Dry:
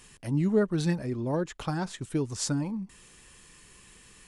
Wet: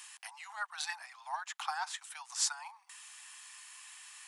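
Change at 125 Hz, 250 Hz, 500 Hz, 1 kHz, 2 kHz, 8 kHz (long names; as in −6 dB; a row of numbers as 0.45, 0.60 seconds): below −40 dB, below −40 dB, −30.0 dB, +0.5 dB, +1.0 dB, +1.0 dB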